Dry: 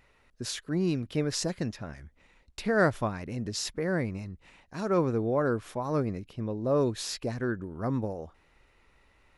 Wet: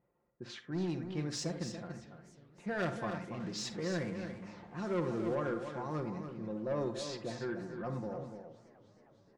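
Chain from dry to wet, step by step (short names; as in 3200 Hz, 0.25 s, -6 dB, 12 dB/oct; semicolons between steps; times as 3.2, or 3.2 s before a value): 3.33–5.35 zero-crossing step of -38.5 dBFS; HPF 120 Hz 12 dB/oct; low-pass opened by the level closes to 630 Hz, open at -26 dBFS; LPF 8900 Hz 24 dB/oct; comb 5.7 ms, depth 59%; soft clip -21 dBFS, distortion -13 dB; echo 0.286 s -8.5 dB; reverb RT60 0.50 s, pre-delay 37 ms, DRR 9 dB; warbling echo 0.309 s, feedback 76%, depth 175 cents, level -22.5 dB; gain -8 dB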